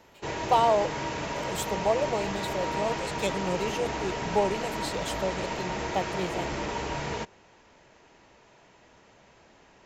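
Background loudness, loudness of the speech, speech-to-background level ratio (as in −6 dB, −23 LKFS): −32.5 LKFS, −30.5 LKFS, 2.0 dB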